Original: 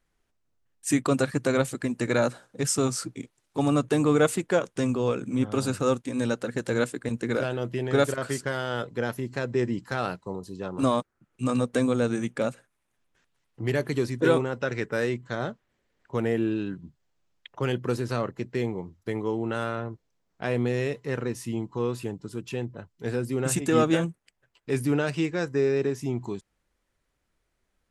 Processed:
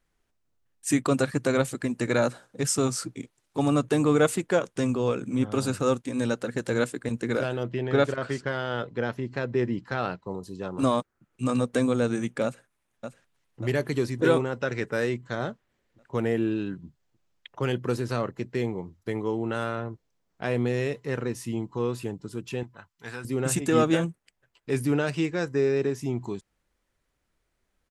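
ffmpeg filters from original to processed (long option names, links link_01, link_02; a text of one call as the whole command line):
ffmpeg -i in.wav -filter_complex "[0:a]asettb=1/sr,asplit=3[link_01][link_02][link_03];[link_01]atrim=end=7.634[link_04];[link_02]atrim=start=7.63:end=10.31,asetpts=PTS-STARTPTS,afade=type=in:duration=0.004:curve=qsin,afade=type=out:start_time=2.676:duration=0.004:curve=qsin,lowpass=4300[link_05];[link_03]atrim=start=10.306[link_06];[link_04][link_05]acrossfade=duration=0.004:curve1=hsin:curve2=qsin[link_07];[link_07][link_06]acrossfade=duration=0.004:curve1=qsin:curve2=hsin,asplit=2[link_08][link_09];[link_09]afade=type=in:start_time=12.44:duration=0.01,afade=type=out:start_time=13.62:duration=0.01,aecho=0:1:590|1180|1770|2360|2950|3540|4130:0.398107|0.218959|0.120427|0.0662351|0.0364293|0.0200361|0.0110199[link_10];[link_08][link_10]amix=inputs=2:normalize=0,asettb=1/sr,asplit=3[link_11][link_12][link_13];[link_11]atrim=end=22.634[link_14];[link_12]atrim=start=22.63:end=23.25,asetpts=PTS-STARTPTS,afade=type=in:duration=0.004:curve=qsin,afade=type=out:start_time=0.616:duration=0.004:curve=qsin,lowshelf=frequency=700:width_type=q:width=1.5:gain=-11[link_15];[link_13]atrim=start=23.246[link_16];[link_14][link_15]acrossfade=duration=0.004:curve1=hsin:curve2=qsin[link_17];[link_17][link_16]acrossfade=duration=0.004:curve1=qsin:curve2=hsin" out.wav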